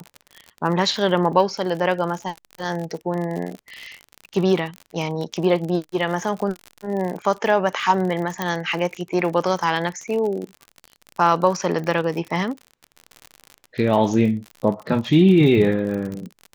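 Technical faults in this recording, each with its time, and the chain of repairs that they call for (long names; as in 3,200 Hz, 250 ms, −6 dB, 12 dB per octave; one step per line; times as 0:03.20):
surface crackle 52 per second −27 dBFS
0:08.42: click −9 dBFS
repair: click removal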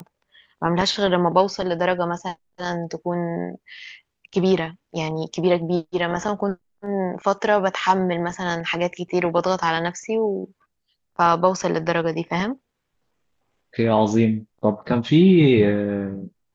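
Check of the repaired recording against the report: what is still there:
none of them is left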